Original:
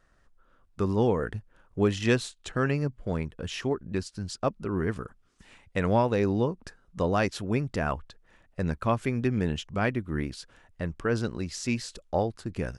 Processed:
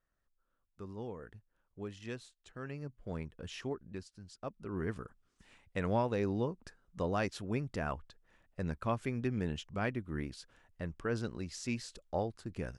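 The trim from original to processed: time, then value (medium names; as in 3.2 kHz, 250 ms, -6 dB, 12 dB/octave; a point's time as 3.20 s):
2.54 s -19 dB
3.16 s -10 dB
3.69 s -10 dB
4.28 s -18 dB
4.83 s -8 dB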